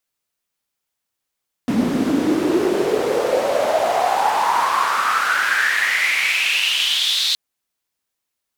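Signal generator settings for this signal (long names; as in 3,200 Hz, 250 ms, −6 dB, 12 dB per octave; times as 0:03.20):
filter sweep on noise white, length 5.67 s bandpass, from 220 Hz, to 4,000 Hz, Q 6.7, exponential, gain ramp −13 dB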